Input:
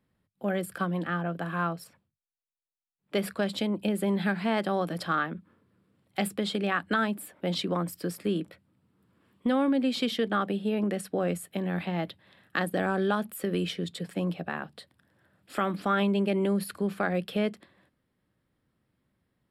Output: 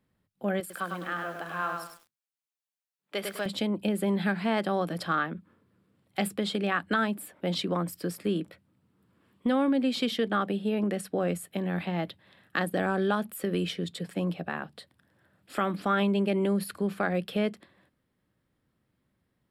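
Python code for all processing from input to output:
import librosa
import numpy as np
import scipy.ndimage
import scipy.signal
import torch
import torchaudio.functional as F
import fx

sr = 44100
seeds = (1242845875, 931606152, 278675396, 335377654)

y = fx.chain(x, sr, fx.highpass(hz=710.0, slope=6),
    fx.echo_crushed(ms=101, feedback_pct=35, bits=9, wet_db=-4.0), at=(0.6, 3.46))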